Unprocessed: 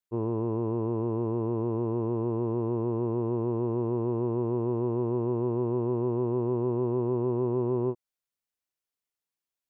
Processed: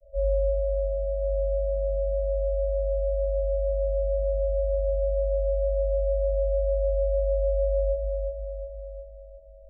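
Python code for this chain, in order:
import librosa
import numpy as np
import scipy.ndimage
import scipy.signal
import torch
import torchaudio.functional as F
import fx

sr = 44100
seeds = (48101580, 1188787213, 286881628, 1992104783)

y = fx.delta_mod(x, sr, bps=32000, step_db=-40.0)
y = fx.vocoder(y, sr, bands=8, carrier='square', carrier_hz=299.0)
y = y * np.sin(2.0 * np.pi * 250.0 * np.arange(len(y)) / sr)
y = scipy.signal.sosfilt(scipy.signal.cheby1(5, 1.0, 640.0, 'lowpass', fs=sr, output='sos'), y)
y = fx.echo_feedback(y, sr, ms=360, feedback_pct=55, wet_db=-5)
y = fx.room_shoebox(y, sr, seeds[0], volume_m3=170.0, walls='furnished', distance_m=5.1)
y = y * 10.0 ** (-5.0 / 20.0)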